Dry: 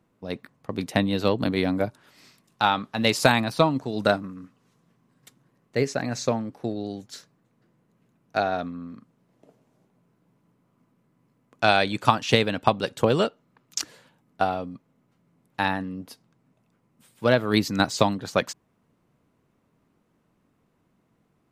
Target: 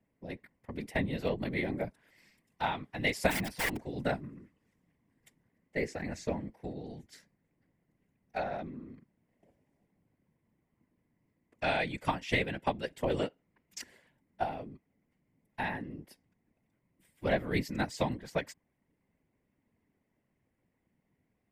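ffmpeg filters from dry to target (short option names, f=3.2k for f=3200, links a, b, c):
-filter_complex "[0:a]equalizer=f=260:w=1.1:g=4,asplit=3[a][b][c];[a]afade=t=out:st=3.3:d=0.02[d];[b]aeval=exprs='(mod(5.96*val(0)+1,2)-1)/5.96':c=same,afade=t=in:st=3.3:d=0.02,afade=t=out:st=3.75:d=0.02[e];[c]afade=t=in:st=3.75:d=0.02[f];[d][e][f]amix=inputs=3:normalize=0,equalizer=f=315:t=o:w=0.33:g=-9,equalizer=f=1.25k:t=o:w=0.33:g=-11,equalizer=f=2k:t=o:w=0.33:g=10,equalizer=f=4k:t=o:w=0.33:g=-7,equalizer=f=6.3k:t=o:w=0.33:g=-5,afftfilt=real='hypot(re,im)*cos(2*PI*random(0))':imag='hypot(re,im)*sin(2*PI*random(1))':win_size=512:overlap=0.75,volume=-4.5dB"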